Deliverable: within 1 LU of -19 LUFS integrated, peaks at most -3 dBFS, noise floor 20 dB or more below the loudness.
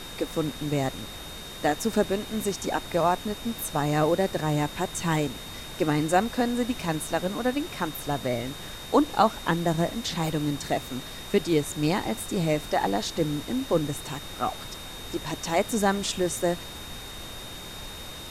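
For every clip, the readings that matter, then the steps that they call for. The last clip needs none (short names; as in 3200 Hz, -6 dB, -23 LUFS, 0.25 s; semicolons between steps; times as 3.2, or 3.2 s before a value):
steady tone 3700 Hz; tone level -42 dBFS; noise floor -40 dBFS; noise floor target -48 dBFS; loudness -27.5 LUFS; peak -7.0 dBFS; loudness target -19.0 LUFS
-> notch 3700 Hz, Q 30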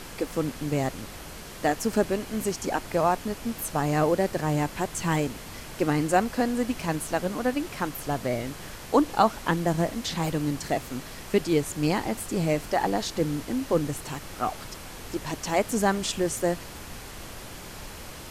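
steady tone none; noise floor -41 dBFS; noise floor target -48 dBFS
-> noise print and reduce 7 dB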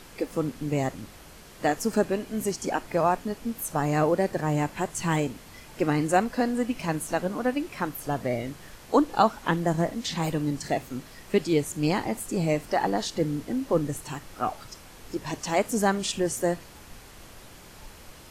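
noise floor -48 dBFS; loudness -27.5 LUFS; peak -7.0 dBFS; loudness target -19.0 LUFS
-> gain +8.5 dB; limiter -3 dBFS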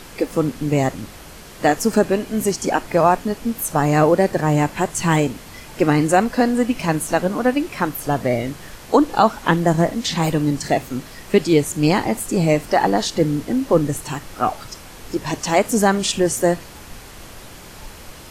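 loudness -19.5 LUFS; peak -3.0 dBFS; noise floor -40 dBFS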